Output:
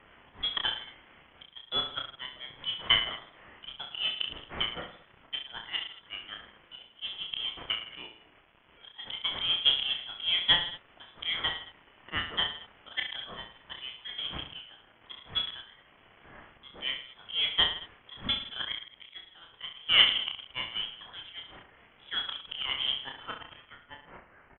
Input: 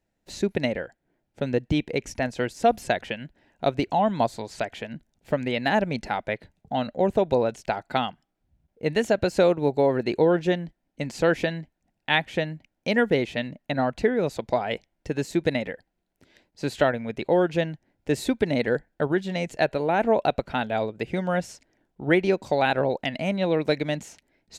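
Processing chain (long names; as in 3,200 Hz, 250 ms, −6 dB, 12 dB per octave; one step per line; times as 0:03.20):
spike at every zero crossing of −16 dBFS
noise gate −20 dBFS, range −26 dB
high-pass filter 390 Hz 12 dB per octave, from 0:23.23 1,300 Hz
volume swells 508 ms
reverse bouncing-ball delay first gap 30 ms, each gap 1.2×, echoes 5
voice inversion scrambler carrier 3,700 Hz
level +7.5 dB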